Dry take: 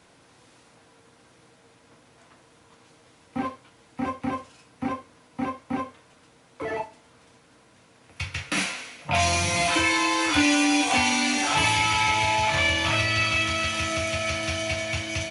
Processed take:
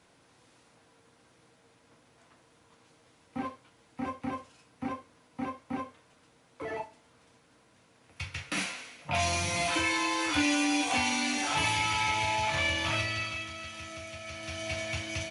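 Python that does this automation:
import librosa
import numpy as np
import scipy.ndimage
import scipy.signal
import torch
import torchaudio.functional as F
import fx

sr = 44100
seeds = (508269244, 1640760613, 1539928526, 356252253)

y = fx.gain(x, sr, db=fx.line((12.97, -6.5), (13.51, -15.5), (14.24, -15.5), (14.77, -6.0)))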